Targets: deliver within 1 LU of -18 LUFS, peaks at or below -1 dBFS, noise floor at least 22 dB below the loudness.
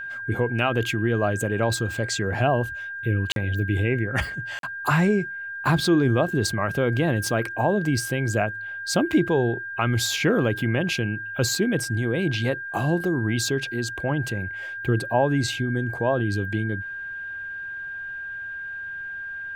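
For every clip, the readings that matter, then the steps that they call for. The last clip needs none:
dropouts 2; longest dropout 42 ms; steady tone 1.6 kHz; tone level -31 dBFS; loudness -24.5 LUFS; peak level -8.0 dBFS; loudness target -18.0 LUFS
-> interpolate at 3.32/4.59 s, 42 ms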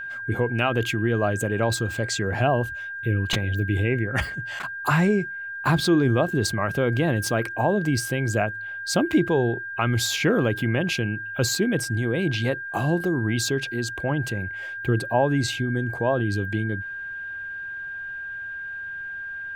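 dropouts 0; steady tone 1.6 kHz; tone level -31 dBFS
-> band-stop 1.6 kHz, Q 30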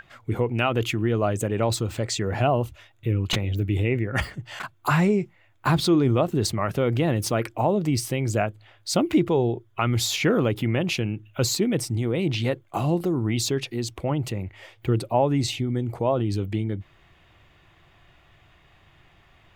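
steady tone not found; loudness -24.5 LUFS; peak level -8.0 dBFS; loudness target -18.0 LUFS
-> trim +6.5 dB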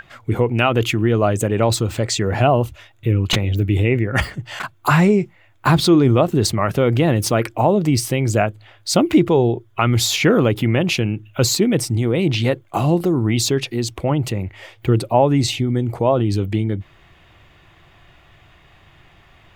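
loudness -18.0 LUFS; peak level -1.5 dBFS; noise floor -52 dBFS

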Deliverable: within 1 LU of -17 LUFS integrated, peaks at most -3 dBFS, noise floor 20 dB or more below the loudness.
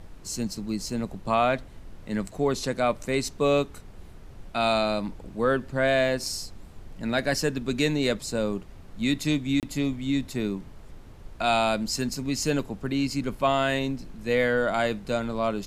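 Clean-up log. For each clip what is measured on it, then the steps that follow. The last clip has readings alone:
dropouts 1; longest dropout 28 ms; noise floor -46 dBFS; noise floor target -47 dBFS; loudness -27.0 LUFS; peak level -10.5 dBFS; loudness target -17.0 LUFS
-> interpolate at 9.60 s, 28 ms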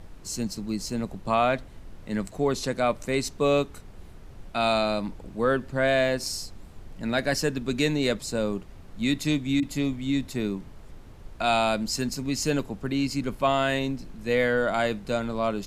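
dropouts 0; noise floor -46 dBFS; noise floor target -47 dBFS
-> noise print and reduce 6 dB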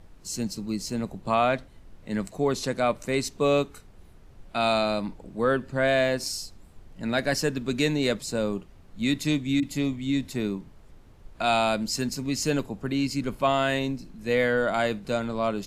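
noise floor -51 dBFS; loudness -27.0 LUFS; peak level -10.5 dBFS; loudness target -17.0 LUFS
-> trim +10 dB; peak limiter -3 dBFS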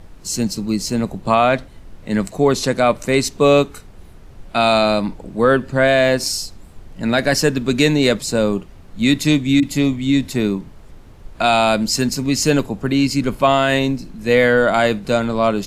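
loudness -17.5 LUFS; peak level -3.0 dBFS; noise floor -41 dBFS

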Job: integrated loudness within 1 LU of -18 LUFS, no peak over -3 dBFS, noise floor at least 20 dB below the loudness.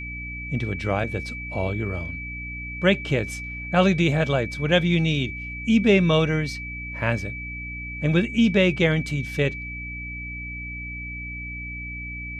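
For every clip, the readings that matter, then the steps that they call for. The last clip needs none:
hum 60 Hz; highest harmonic 300 Hz; hum level -35 dBFS; steady tone 2.3 kHz; tone level -33 dBFS; loudness -24.5 LUFS; peak level -6.0 dBFS; loudness target -18.0 LUFS
-> de-hum 60 Hz, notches 5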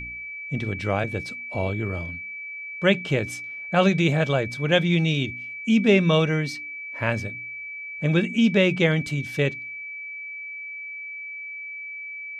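hum not found; steady tone 2.3 kHz; tone level -33 dBFS
-> band-stop 2.3 kHz, Q 30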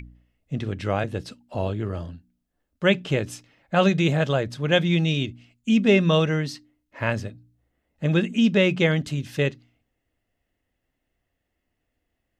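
steady tone not found; loudness -23.0 LUFS; peak level -7.0 dBFS; loudness target -18.0 LUFS
-> trim +5 dB; peak limiter -3 dBFS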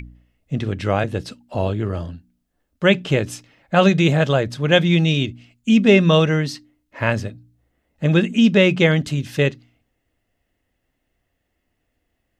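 loudness -18.0 LUFS; peak level -3.0 dBFS; noise floor -74 dBFS

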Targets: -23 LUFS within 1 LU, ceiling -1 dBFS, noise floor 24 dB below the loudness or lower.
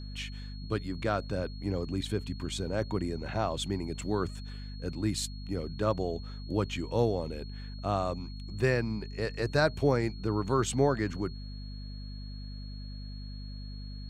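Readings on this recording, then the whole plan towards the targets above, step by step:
hum 50 Hz; highest harmonic 250 Hz; hum level -38 dBFS; steady tone 4.3 kHz; tone level -51 dBFS; loudness -32.0 LUFS; peak level -12.5 dBFS; loudness target -23.0 LUFS
-> de-hum 50 Hz, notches 5; band-stop 4.3 kHz, Q 30; trim +9 dB

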